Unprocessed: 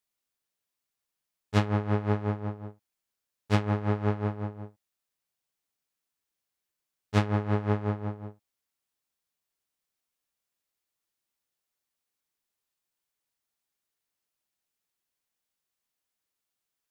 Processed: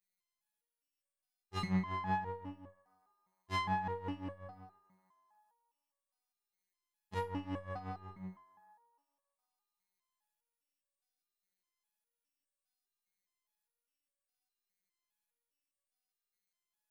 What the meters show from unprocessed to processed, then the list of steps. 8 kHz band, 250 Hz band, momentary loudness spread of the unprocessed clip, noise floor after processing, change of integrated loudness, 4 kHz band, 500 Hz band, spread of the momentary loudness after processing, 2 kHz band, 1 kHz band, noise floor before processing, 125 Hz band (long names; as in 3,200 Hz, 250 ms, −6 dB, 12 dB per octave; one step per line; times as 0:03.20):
can't be measured, −10.5 dB, 16 LU, below −85 dBFS, −10.5 dB, −6.0 dB, −13.5 dB, 15 LU, −6.5 dB, −3.0 dB, below −85 dBFS, −15.5 dB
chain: feedback echo with a band-pass in the loop 305 ms, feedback 50%, band-pass 920 Hz, level −18 dB
phases set to zero 94.1 Hz
step-sequenced resonator 4.9 Hz 180–560 Hz
level +10 dB